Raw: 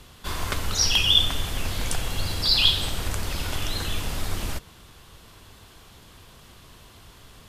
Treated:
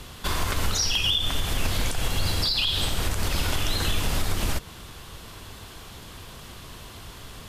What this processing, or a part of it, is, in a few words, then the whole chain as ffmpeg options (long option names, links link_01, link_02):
stacked limiters: -af "alimiter=limit=-11.5dB:level=0:latency=1:release=467,alimiter=limit=-18dB:level=0:latency=1:release=114,alimiter=limit=-21.5dB:level=0:latency=1:release=198,volume=7dB"